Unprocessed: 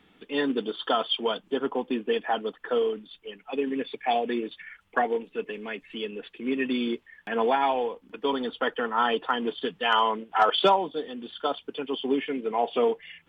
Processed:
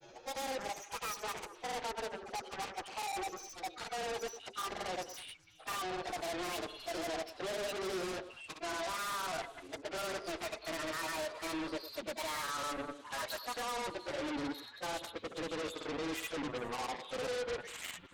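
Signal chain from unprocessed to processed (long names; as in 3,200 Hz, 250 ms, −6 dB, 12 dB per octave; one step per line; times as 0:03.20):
gliding playback speed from 190% → 103%
high-shelf EQ 3,200 Hz −11 dB
notch filter 400 Hz, Q 12
reversed playback
downward compressor 8 to 1, threshold −34 dBFS, peak gain reduction 17 dB
reversed playback
brickwall limiter −31.5 dBFS, peak gain reduction 8.5 dB
phase-vocoder stretch with locked phases 2×
soft clipping −39 dBFS, distortion −13 dB
granular cloud 100 ms, grains 20 per second, pitch spread up and down by 0 semitones
harmonic generator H 7 −7 dB, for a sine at −39 dBFS
on a send: echo through a band-pass that steps 103 ms, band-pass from 440 Hz, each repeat 1.4 octaves, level −9.5 dB
on the sum: level +5 dB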